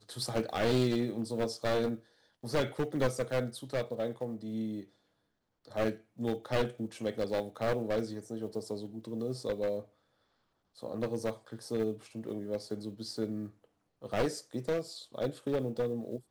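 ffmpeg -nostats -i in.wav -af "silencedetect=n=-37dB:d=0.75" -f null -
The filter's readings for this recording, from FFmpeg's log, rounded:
silence_start: 4.81
silence_end: 5.76 | silence_duration: 0.95
silence_start: 9.80
silence_end: 10.83 | silence_duration: 1.03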